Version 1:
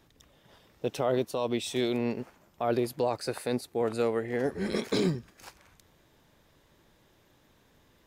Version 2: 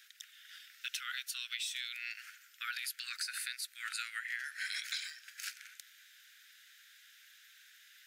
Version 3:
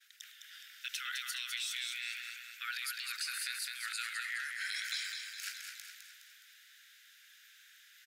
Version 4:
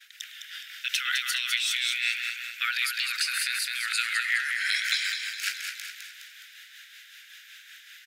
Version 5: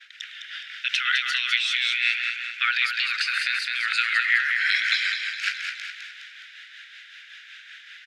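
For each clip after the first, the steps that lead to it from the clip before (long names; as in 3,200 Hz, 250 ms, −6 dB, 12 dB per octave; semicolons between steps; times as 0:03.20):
Butterworth high-pass 1,400 Hz 96 dB per octave; downward compressor 16 to 1, threshold −45 dBFS, peak gain reduction 14.5 dB; level +9.5 dB
repeating echo 208 ms, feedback 51%, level −6 dB; downward expander −57 dBFS; transient designer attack −1 dB, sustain +5 dB
parametric band 2,500 Hz +6.5 dB 1.5 octaves; amplitude tremolo 5.3 Hz, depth 42%; level +9 dB
low-pass filter 3,500 Hz 12 dB per octave; level +6 dB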